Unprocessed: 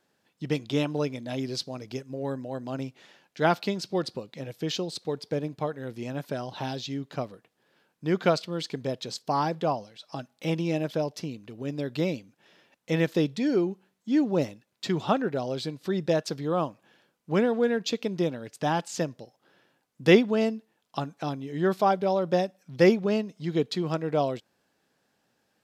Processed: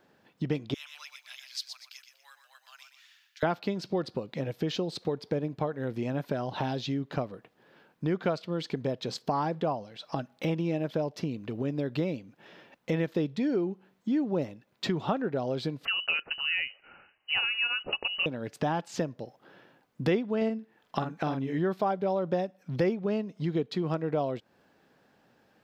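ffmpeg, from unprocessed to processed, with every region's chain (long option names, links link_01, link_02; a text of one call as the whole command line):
ffmpeg -i in.wav -filter_complex "[0:a]asettb=1/sr,asplit=3[link_01][link_02][link_03];[link_01]atrim=end=0.744[link_04];[link_02]atrim=start=0.74:end=3.43,asetpts=PTS-STARTPTS,afade=type=in:duration=0.004:curve=qsin,afade=type=out:start_time=2.686:duration=0.004:curve=qsin,highpass=frequency=1200:width=0.5412,highpass=frequency=1200:width=1.3066,aderivative,aecho=1:1:121|242|363|484:0.398|0.135|0.046|0.0156,atrim=end_sample=118629[link_05];[link_03]atrim=start=3.426[link_06];[link_04][link_05]acrossfade=duration=0.004:curve1=hsin:curve2=qsin[link_07];[link_07][link_06]acrossfade=duration=0.004:curve1=qsin:curve2=hsin,asettb=1/sr,asplit=3[link_08][link_09][link_10];[link_08]atrim=end=15.854[link_11];[link_09]atrim=start=15.85:end=18.26,asetpts=PTS-STARTPTS,afade=type=in:duration=0.004:curve=qsin,afade=type=out:start_time=2.406:duration=0.004:curve=qsin,aemphasis=mode=production:type=75kf,lowpass=frequency=2600:width_type=q:width=0.5098,lowpass=frequency=2600:width_type=q:width=0.6013,lowpass=frequency=2600:width_type=q:width=0.9,lowpass=frequency=2600:width_type=q:width=2.563,afreqshift=-3100[link_12];[link_10]atrim=start=18.256[link_13];[link_11][link_12]acrossfade=duration=0.004:curve1=hsin:curve2=qsin[link_14];[link_14][link_13]acrossfade=duration=0.004:curve1=qsin:curve2=hsin,asettb=1/sr,asplit=3[link_15][link_16][link_17];[link_15]atrim=end=20.374[link_18];[link_16]atrim=start=20.37:end=21.59,asetpts=PTS-STARTPTS,afade=type=in:duration=0.004:curve=qsin,afade=type=out:start_time=1.216:duration=0.004:curve=qsin,equalizer=frequency=1800:width_type=o:width=0.89:gain=5,asplit=2[link_19][link_20];[link_20]adelay=45,volume=-6.5dB[link_21];[link_19][link_21]amix=inputs=2:normalize=0,atrim=end_sample=53802[link_22];[link_17]atrim=start=21.586[link_23];[link_18][link_22]acrossfade=duration=0.004:curve1=hsin:curve2=qsin[link_24];[link_24][link_23]acrossfade=duration=0.004:curve1=qsin:curve2=hsin,equalizer=frequency=9100:width=0.45:gain=-13,acompressor=threshold=-39dB:ratio=3,volume=9dB" out.wav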